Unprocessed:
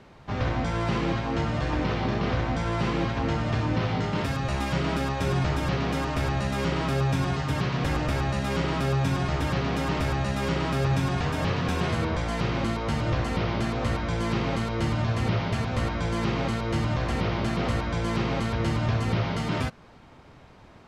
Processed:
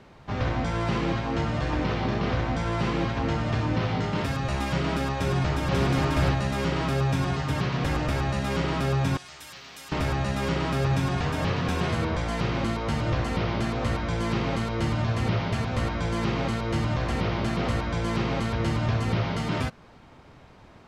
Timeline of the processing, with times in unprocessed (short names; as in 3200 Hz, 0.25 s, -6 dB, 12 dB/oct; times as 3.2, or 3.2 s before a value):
5.17–5.8 echo throw 0.54 s, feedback 15%, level -1 dB
9.17–9.92 pre-emphasis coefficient 0.97